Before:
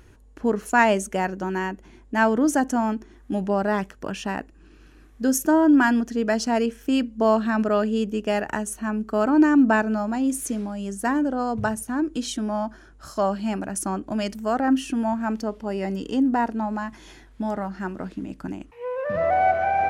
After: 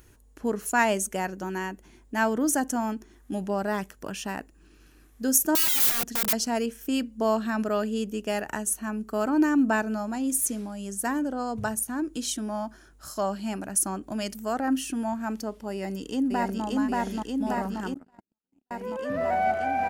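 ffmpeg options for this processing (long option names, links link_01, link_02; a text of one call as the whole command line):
ffmpeg -i in.wav -filter_complex "[0:a]asettb=1/sr,asplit=3[link_01][link_02][link_03];[link_01]atrim=end=5.554[link_04];[link_02]atrim=start=5.55:end=6.33,asetpts=PTS-STARTPTS,afade=type=in:duration=0.004:curve=qsin,afade=type=out:start_time=0.776:duration=0.004:curve=qsin,aeval=exprs='(mod(14.1*val(0)+1,2)-1)/14.1':channel_layout=same[link_05];[link_03]atrim=start=6.326[link_06];[link_04][link_05]acrossfade=duration=0.004:curve1=hsin:curve2=qsin[link_07];[link_07][link_06]acrossfade=duration=0.004:curve1=qsin:curve2=hsin,asplit=2[link_08][link_09];[link_09]afade=type=in:start_time=15.72:duration=0.01,afade=type=out:start_time=16.64:duration=0.01,aecho=0:1:580|1160|1740|2320|2900|3480|4060|4640|5220|5800|6380|6960:0.944061|0.708046|0.531034|0.398276|0.298707|0.22403|0.168023|0.126017|0.0945127|0.0708845|0.0531634|0.0398725[link_10];[link_08][link_10]amix=inputs=2:normalize=0,asettb=1/sr,asplit=3[link_11][link_12][link_13];[link_11]atrim=end=17.944[link_14];[link_12]atrim=start=17.94:end=18.71,asetpts=PTS-STARTPTS,afade=type=in:duration=0.004:curve=qsin,afade=type=out:start_time=0.766:duration=0.004:curve=qsin,agate=range=-59dB:threshold=-22dB:ratio=16:release=100:detection=peak[link_15];[link_13]atrim=start=18.706[link_16];[link_14][link_15]acrossfade=duration=0.004:curve1=hsin:curve2=qsin[link_17];[link_17][link_16]acrossfade=duration=0.004:curve1=qsin:curve2=hsin,aemphasis=mode=production:type=50fm,volume=-5dB" out.wav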